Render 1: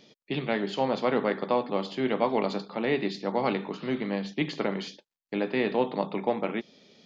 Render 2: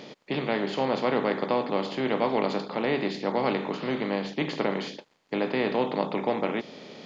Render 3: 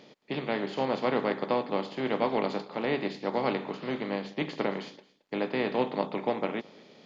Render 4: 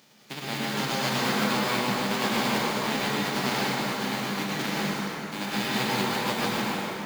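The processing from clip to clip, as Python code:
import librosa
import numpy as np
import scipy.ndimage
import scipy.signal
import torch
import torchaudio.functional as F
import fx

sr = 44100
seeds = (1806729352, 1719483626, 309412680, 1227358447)

y1 = fx.bin_compress(x, sr, power=0.6)
y1 = y1 * librosa.db_to_amplitude(-2.5)
y2 = y1 + 10.0 ** (-18.0 / 20.0) * np.pad(y1, (int(221 * sr / 1000.0), 0))[:len(y1)]
y2 = fx.upward_expand(y2, sr, threshold_db=-40.0, expansion=1.5)
y2 = y2 * librosa.db_to_amplitude(-1.0)
y3 = fx.envelope_flatten(y2, sr, power=0.3)
y3 = fx.rev_plate(y3, sr, seeds[0], rt60_s=4.2, hf_ratio=0.5, predelay_ms=90, drr_db=-7.5)
y3 = y3 * librosa.db_to_amplitude(-5.0)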